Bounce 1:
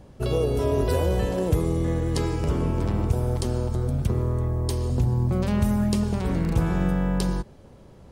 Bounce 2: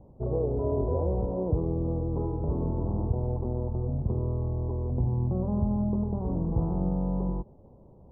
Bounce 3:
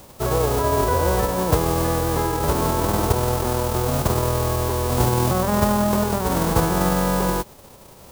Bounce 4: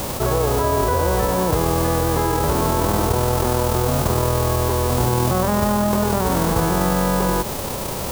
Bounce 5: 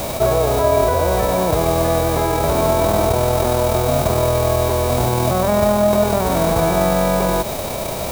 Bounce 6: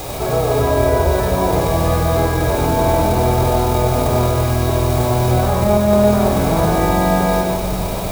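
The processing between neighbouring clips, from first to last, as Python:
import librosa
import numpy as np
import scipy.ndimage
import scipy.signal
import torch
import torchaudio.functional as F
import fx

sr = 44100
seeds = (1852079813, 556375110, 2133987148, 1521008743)

y1 = scipy.signal.sosfilt(scipy.signal.butter(8, 1000.0, 'lowpass', fs=sr, output='sos'), x)
y1 = y1 * 10.0 ** (-4.5 / 20.0)
y2 = fx.envelope_flatten(y1, sr, power=0.3)
y2 = y2 * 10.0 ** (7.5 / 20.0)
y3 = fx.env_flatten(y2, sr, amount_pct=70)
y3 = y3 * 10.0 ** (-3.0 / 20.0)
y4 = fx.small_body(y3, sr, hz=(650.0, 2300.0, 3800.0), ring_ms=45, db=13)
y5 = fx.room_shoebox(y4, sr, seeds[0], volume_m3=3800.0, walls='mixed', distance_m=3.9)
y5 = y5 * 10.0 ** (-5.0 / 20.0)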